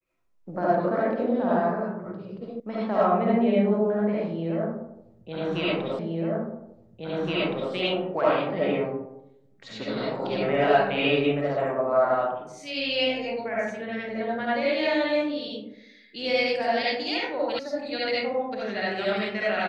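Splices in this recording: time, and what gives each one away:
0:02.60: cut off before it has died away
0:05.99: the same again, the last 1.72 s
0:17.59: cut off before it has died away

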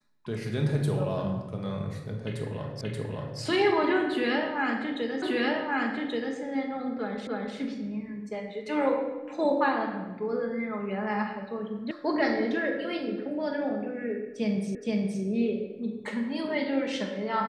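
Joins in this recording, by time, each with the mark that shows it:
0:02.81: the same again, the last 0.58 s
0:05.22: the same again, the last 1.13 s
0:07.27: the same again, the last 0.3 s
0:11.91: cut off before it has died away
0:14.75: the same again, the last 0.47 s

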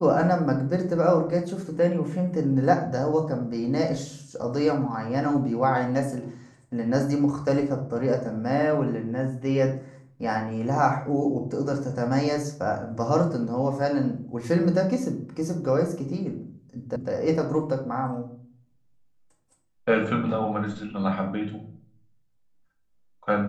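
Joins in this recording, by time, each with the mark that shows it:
0:16.96: cut off before it has died away

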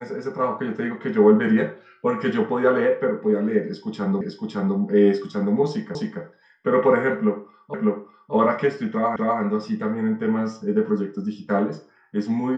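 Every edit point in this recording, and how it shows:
0:04.21: the same again, the last 0.56 s
0:05.95: the same again, the last 0.26 s
0:07.74: the same again, the last 0.6 s
0:09.16: the same again, the last 0.25 s

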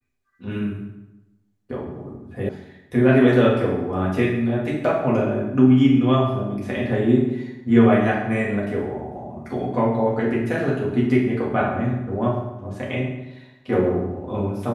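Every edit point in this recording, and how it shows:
0:02.49: cut off before it has died away

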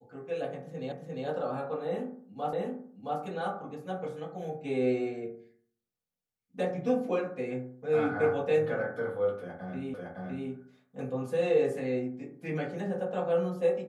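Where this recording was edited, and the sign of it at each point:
0:00.92: the same again, the last 0.35 s
0:02.53: the same again, the last 0.67 s
0:09.94: the same again, the last 0.56 s

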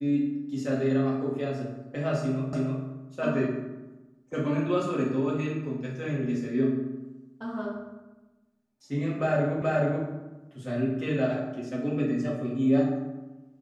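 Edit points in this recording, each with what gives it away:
0:02.53: the same again, the last 0.31 s
0:09.62: the same again, the last 0.43 s

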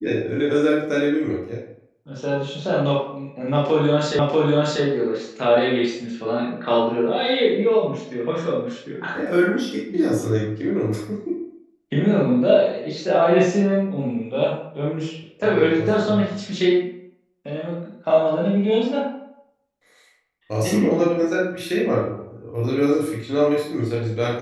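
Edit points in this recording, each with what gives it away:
0:04.19: the same again, the last 0.64 s

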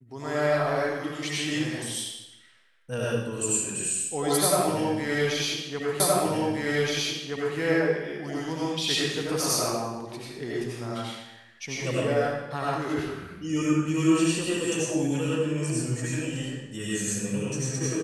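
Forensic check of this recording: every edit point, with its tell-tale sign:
0:06.00: the same again, the last 1.57 s

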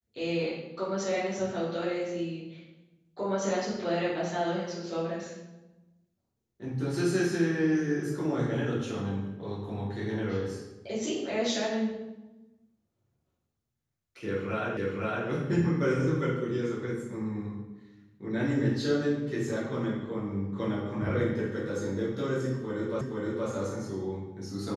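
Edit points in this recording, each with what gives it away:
0:14.77: the same again, the last 0.51 s
0:23.01: the same again, the last 0.47 s

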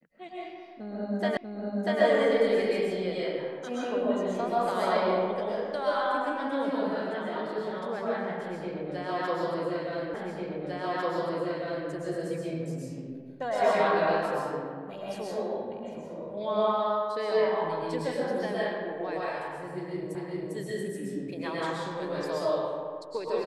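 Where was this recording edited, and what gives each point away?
0:01.37: the same again, the last 0.64 s
0:10.14: the same again, the last 1.75 s
0:20.15: the same again, the last 0.4 s

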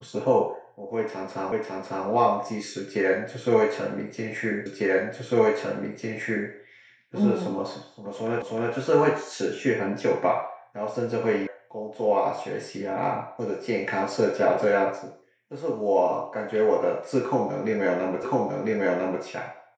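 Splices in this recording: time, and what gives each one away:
0:01.52: the same again, the last 0.55 s
0:04.66: the same again, the last 1.85 s
0:08.42: the same again, the last 0.31 s
0:11.47: cut off before it has died away
0:18.23: the same again, the last 1 s

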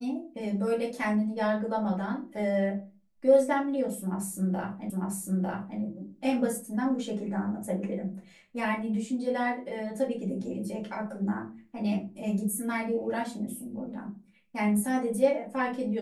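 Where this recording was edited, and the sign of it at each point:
0:04.90: the same again, the last 0.9 s

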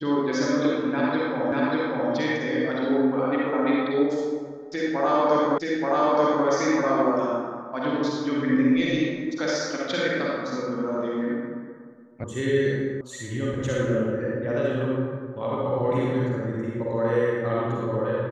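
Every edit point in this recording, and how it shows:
0:01.52: the same again, the last 0.59 s
0:05.58: the same again, the last 0.88 s
0:12.24: cut off before it has died away
0:13.01: cut off before it has died away

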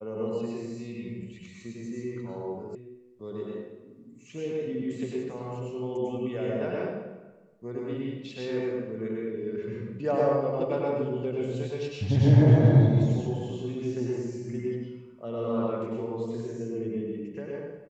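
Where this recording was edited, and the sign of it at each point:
0:02.75: cut off before it has died away

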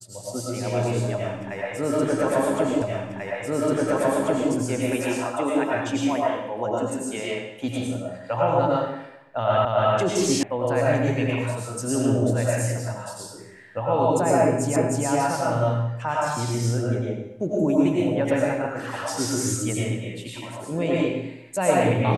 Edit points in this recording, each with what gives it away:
0:02.82: the same again, the last 1.69 s
0:09.65: the same again, the last 0.28 s
0:10.43: cut off before it has died away
0:14.76: the same again, the last 0.31 s

